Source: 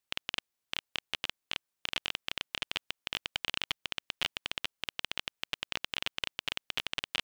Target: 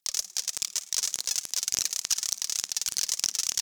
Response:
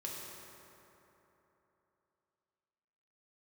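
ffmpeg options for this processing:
-filter_complex "[0:a]tiltshelf=f=1.3k:g=-8,aphaser=in_gain=1:out_gain=1:delay=4.7:decay=0.72:speed=1.7:type=sinusoidal,asplit=5[a][b][c][d][e];[b]adelay=108,afreqshift=88,volume=-14.5dB[f];[c]adelay=216,afreqshift=176,volume=-21.2dB[g];[d]adelay=324,afreqshift=264,volume=-28dB[h];[e]adelay=432,afreqshift=352,volume=-34.7dB[i];[a][f][g][h][i]amix=inputs=5:normalize=0,asplit=2[j][k];[1:a]atrim=start_sample=2205[l];[k][l]afir=irnorm=-1:irlink=0,volume=-20dB[m];[j][m]amix=inputs=2:normalize=0,asetrate=88200,aresample=44100"

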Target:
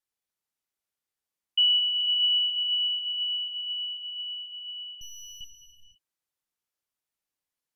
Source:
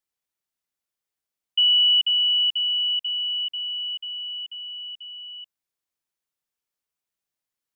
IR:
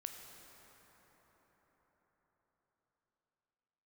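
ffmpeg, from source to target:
-filter_complex "[0:a]asettb=1/sr,asplit=3[a][b][c];[a]atrim=end=5.014[d];[b]atrim=start=5.01:end=5.41,asetpts=PTS-STARTPTS,afade=t=in:d=0.004:c=qsin,afade=t=out:st=0.396:d=0.004:c=qsin,aeval=exprs='abs(val(0))':c=same[e];[c]atrim=start=5.406[f];[d][e]acrossfade=d=0.004:c1=hsin:c2=qsin[g];[g][f]acrossfade=d=0.004:c1=qsin:c2=hsin[h];[1:a]atrim=start_sample=2205,afade=t=out:st=0.41:d=0.01,atrim=end_sample=18522,asetrate=29547,aresample=44100[i];[h][i]afir=irnorm=-1:irlink=0"

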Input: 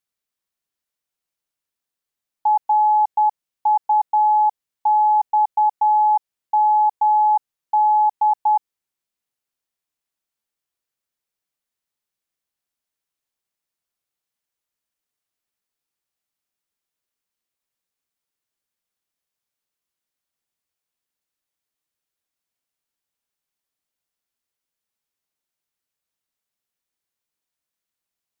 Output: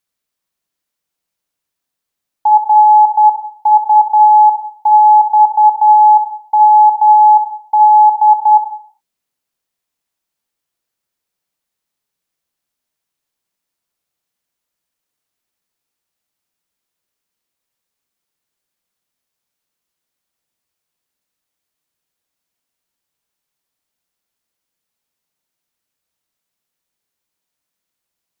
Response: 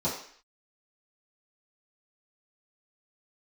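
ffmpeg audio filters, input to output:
-filter_complex "[0:a]asplit=2[a][b];[1:a]atrim=start_sample=2205,adelay=57[c];[b][c]afir=irnorm=-1:irlink=0,volume=-17dB[d];[a][d]amix=inputs=2:normalize=0,volume=6dB"

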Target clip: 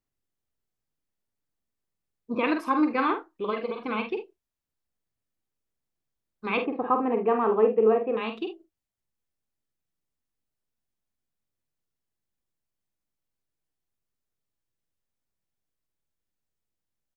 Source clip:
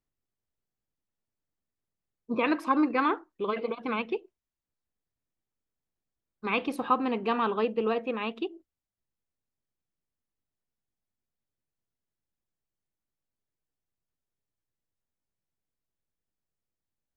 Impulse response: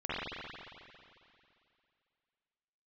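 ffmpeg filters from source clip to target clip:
-filter_complex "[0:a]asettb=1/sr,asplit=3[a][b][c];[a]atrim=end=6.574[d];[b]atrim=start=6.57:end=8.17,asetpts=PTS-STARTPTS,afade=t=in:d=0.004:c=qsin,afade=t=out:st=1.596:d=0.004:c=qsin,highpass=110,equalizer=f=430:t=q:w=4:g=8,equalizer=f=720:t=q:w=4:g=5,equalizer=f=1.5k:t=q:w=4:g=-4,lowpass=f=2k:w=0.5412,lowpass=f=2k:w=1.3066[e];[c]atrim=start=8.166[f];[d][e]acrossfade=d=0.004:c1=hsin:c2=qsin[g];[g][f]acrossfade=d=0.004:c1=qsin:c2=hsin,aecho=1:1:46|74:0.473|0.168"

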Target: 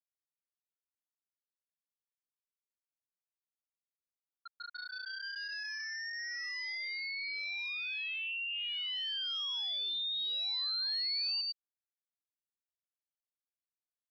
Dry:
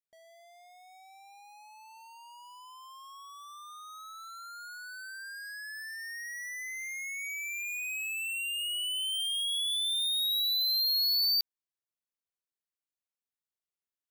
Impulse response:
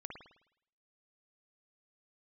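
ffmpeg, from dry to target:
-filter_complex "[0:a]agate=range=-33dB:threshold=-48dB:ratio=3:detection=peak,apsyclip=33dB,asplit=2[a][b];[b]aecho=0:1:111:0.237[c];[a][c]amix=inputs=2:normalize=0,adynamicequalizer=threshold=0.282:dfrequency=4100:dqfactor=1.2:tfrequency=4100:tqfactor=1.2:attack=5:release=100:ratio=0.375:range=2:mode=boostabove:tftype=bell,afftfilt=real='re*gte(hypot(re,im),3.55)':imag='im*gte(hypot(re,im),3.55)':win_size=1024:overlap=0.75,acompressor=threshold=-15dB:ratio=3,asplit=2[d][e];[e]highpass=f=720:p=1,volume=8dB,asoftclip=type=tanh:threshold=-8.5dB[f];[d][f]amix=inputs=2:normalize=0,lowpass=f=3.3k:p=1,volume=-6dB,aresample=11025,asoftclip=type=tanh:threshold=-23dB,aresample=44100,aderivative,volume=-6dB"

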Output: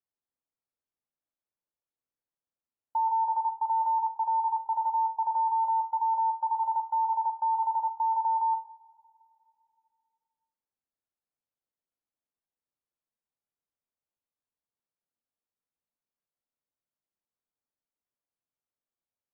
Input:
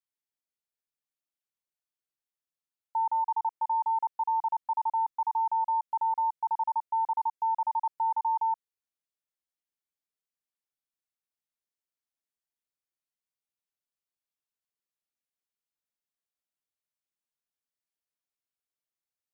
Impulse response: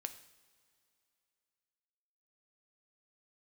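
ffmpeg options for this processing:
-filter_complex "[0:a]lowpass=1.1k[a];[1:a]atrim=start_sample=2205[b];[a][b]afir=irnorm=-1:irlink=0,volume=5.5dB"

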